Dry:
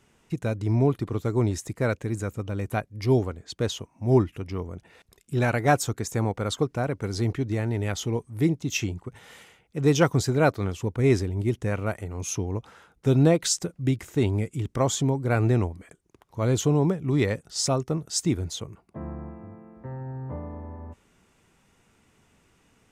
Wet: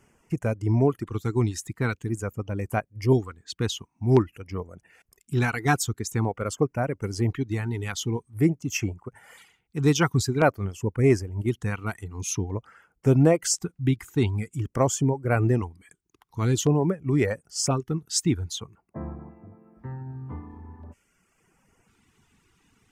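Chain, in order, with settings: reverb removal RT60 1.2 s; LFO notch square 0.48 Hz 580–3800 Hz; gain +2 dB

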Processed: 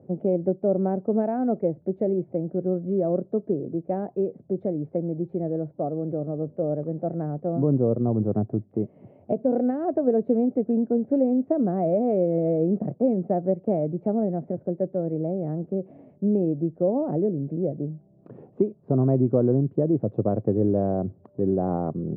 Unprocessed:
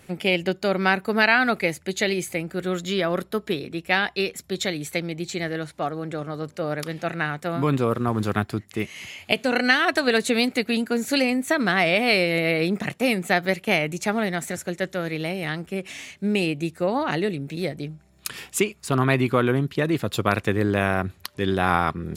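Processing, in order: Chebyshev band-pass 110–620 Hz, order 3; in parallel at -2.5 dB: compressor, threshold -32 dBFS, peak gain reduction 14.5 dB

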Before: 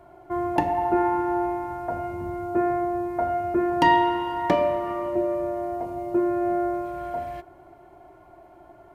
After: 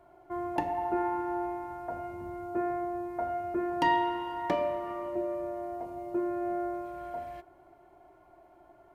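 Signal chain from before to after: bell 110 Hz -4 dB 2.1 oct; gain -7.5 dB

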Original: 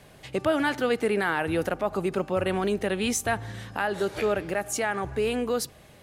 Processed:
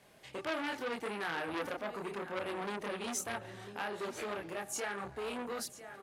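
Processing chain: HPF 230 Hz 6 dB/oct; on a send: echo 0.999 s -14.5 dB; on the sum: chorus voices 6, 1.4 Hz, delay 27 ms, depth 3 ms; core saturation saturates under 2200 Hz; gain -5 dB

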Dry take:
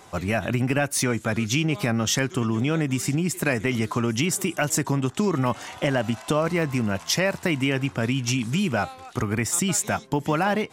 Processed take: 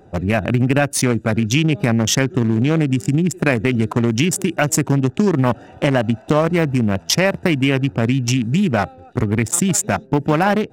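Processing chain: Wiener smoothing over 41 samples; gain +8 dB

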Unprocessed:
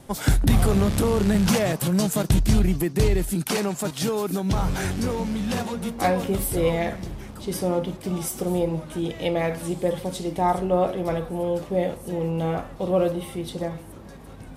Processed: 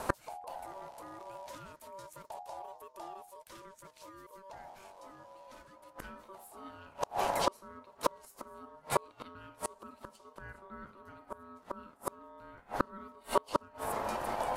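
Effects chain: ring modulator 770 Hz; flipped gate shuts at -23 dBFS, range -34 dB; gain +9.5 dB

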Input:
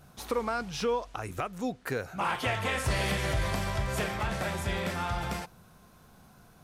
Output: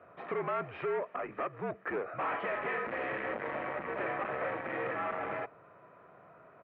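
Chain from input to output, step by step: comb 1.6 ms, depth 41%; hard clip -34.5 dBFS, distortion -5 dB; mistuned SSB -59 Hz 270–2300 Hz; gain +4 dB

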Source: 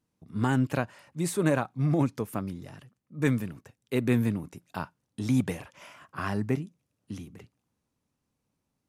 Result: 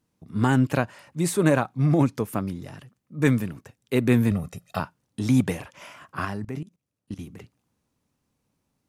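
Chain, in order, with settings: 4.31–4.8 comb 1.6 ms, depth 96%; 6.25–7.19 level quantiser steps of 18 dB; gain +5 dB

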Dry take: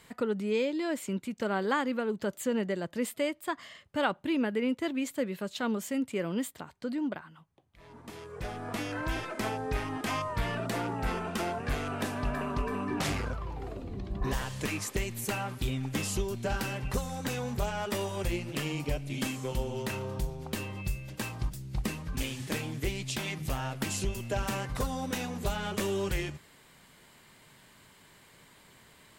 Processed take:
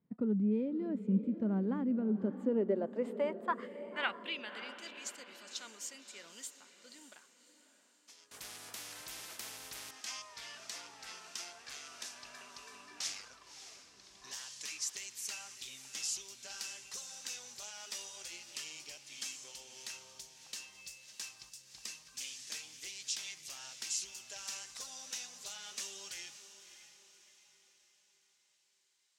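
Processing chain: gate -44 dBFS, range -14 dB; band-pass sweep 200 Hz -> 5800 Hz, 2.08–4.83; diffused feedback echo 0.592 s, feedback 46%, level -11.5 dB; 8.31–9.91 spectral compressor 4:1; gain +4 dB

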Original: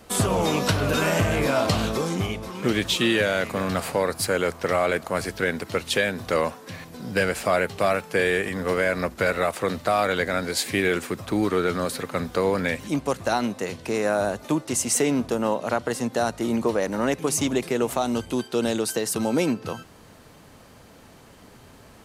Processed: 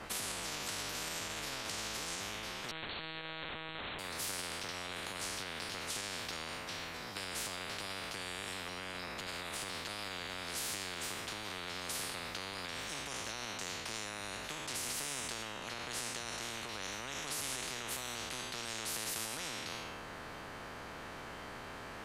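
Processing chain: spectral trails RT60 0.89 s; 8.68–9.27 bell 200 Hz +13.5 dB 2 oct; limiter -15.5 dBFS, peak gain reduction 11.5 dB; LPF 1200 Hz 6 dB/oct; 2.71–3.99 monotone LPC vocoder at 8 kHz 160 Hz; spectral compressor 10:1; gain -8 dB

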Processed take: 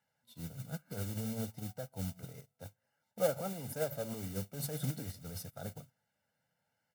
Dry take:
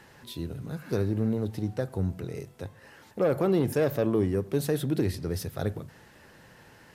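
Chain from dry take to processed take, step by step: limiter -23.5 dBFS, peak gain reduction 8.5 dB; dynamic EQ 2800 Hz, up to -4 dB, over -57 dBFS, Q 0.89; flange 0.57 Hz, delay 0.8 ms, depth 9.9 ms, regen +79%; modulation noise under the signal 15 dB; HPF 120 Hz 12 dB/oct; high shelf 7900 Hz +3 dB; comb 1.4 ms, depth 84%; upward expander 2.5:1, over -52 dBFS; gain +6 dB

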